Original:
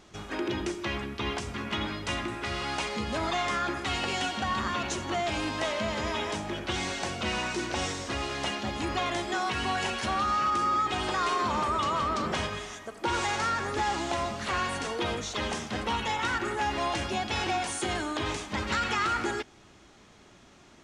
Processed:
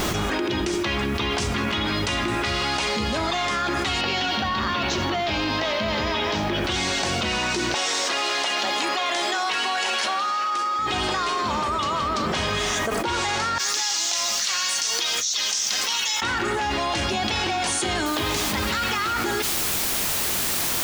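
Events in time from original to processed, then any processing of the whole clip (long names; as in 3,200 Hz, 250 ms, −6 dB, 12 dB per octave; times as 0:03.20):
0:04.01–0:06.64: low-pass filter 5,400 Hz 24 dB per octave
0:07.74–0:10.79: high-pass filter 500 Hz
0:13.58–0:16.22: resonant band-pass 5,900 Hz, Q 2.6
0:18.06: noise floor change −67 dB −44 dB
whole clip: dynamic equaliser 4,400 Hz, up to +5 dB, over −47 dBFS, Q 1.1; envelope flattener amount 100%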